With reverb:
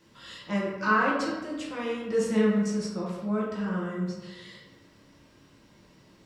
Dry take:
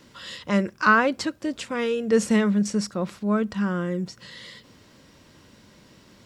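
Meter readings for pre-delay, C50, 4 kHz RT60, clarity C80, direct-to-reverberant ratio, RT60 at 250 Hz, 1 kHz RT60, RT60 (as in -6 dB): 4 ms, 1.5 dB, 0.70 s, 4.5 dB, -5.5 dB, 1.4 s, 1.2 s, 1.2 s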